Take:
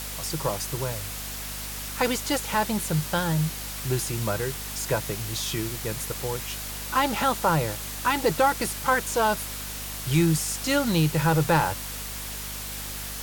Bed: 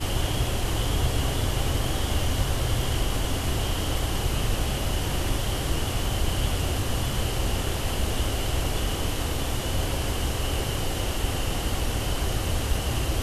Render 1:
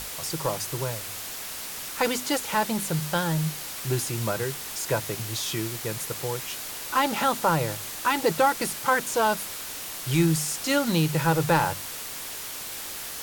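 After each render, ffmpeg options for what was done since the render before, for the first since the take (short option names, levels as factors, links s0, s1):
-af "bandreject=f=50:t=h:w=6,bandreject=f=100:t=h:w=6,bandreject=f=150:t=h:w=6,bandreject=f=200:t=h:w=6,bandreject=f=250:t=h:w=6"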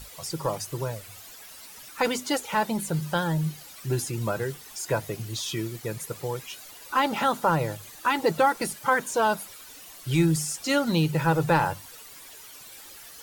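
-af "afftdn=nr=13:nf=-36"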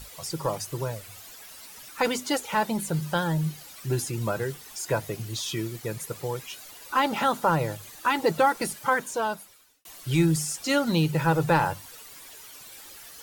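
-filter_complex "[0:a]asplit=2[s0][s1];[s0]atrim=end=9.85,asetpts=PTS-STARTPTS,afade=t=out:st=8.8:d=1.05[s2];[s1]atrim=start=9.85,asetpts=PTS-STARTPTS,afade=t=in:d=0.004:c=hsin[s3];[s2][s3]concat=n=2:v=0:a=1"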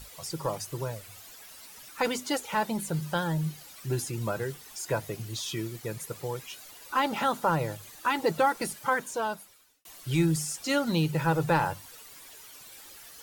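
-af "volume=0.708"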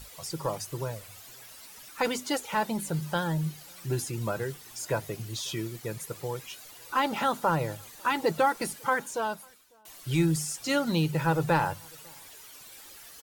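-filter_complex "[0:a]asplit=2[s0][s1];[s1]adelay=548.1,volume=0.0316,highshelf=f=4000:g=-12.3[s2];[s0][s2]amix=inputs=2:normalize=0"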